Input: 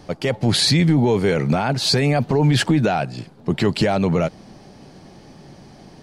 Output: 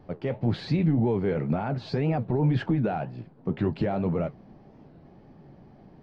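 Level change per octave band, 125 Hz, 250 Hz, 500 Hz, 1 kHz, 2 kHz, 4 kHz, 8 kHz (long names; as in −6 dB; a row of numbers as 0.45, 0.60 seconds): −7.0 dB, −7.0 dB, −8.5 dB, −9.5 dB, −14.0 dB, −23.0 dB, below −30 dB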